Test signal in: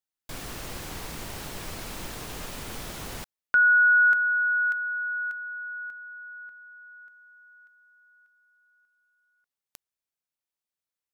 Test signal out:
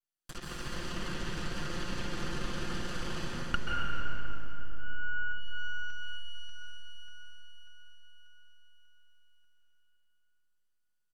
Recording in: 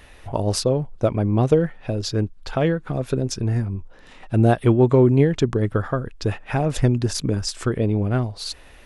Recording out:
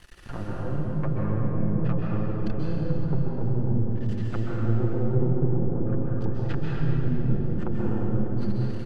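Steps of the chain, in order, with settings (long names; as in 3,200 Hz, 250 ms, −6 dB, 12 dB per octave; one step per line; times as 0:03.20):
lower of the sound and its delayed copy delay 0.65 ms
comb filter 5.7 ms, depth 58%
downward compressor 6 to 1, threshold −20 dBFS
half-wave rectification
treble cut that deepens with the level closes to 320 Hz, closed at −25.5 dBFS
on a send: delay with a low-pass on its return 153 ms, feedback 81%, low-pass 610 Hz, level −10 dB
on the sum: dense smooth reverb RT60 3.5 s, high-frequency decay 0.75×, pre-delay 120 ms, DRR −4.5 dB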